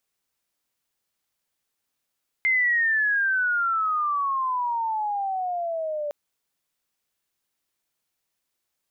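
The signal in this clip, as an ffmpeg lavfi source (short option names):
-f lavfi -i "aevalsrc='pow(10,(-18-8*t/3.66)/20)*sin(2*PI*2100*3.66/log(580/2100)*(exp(log(580/2100)*t/3.66)-1))':d=3.66:s=44100"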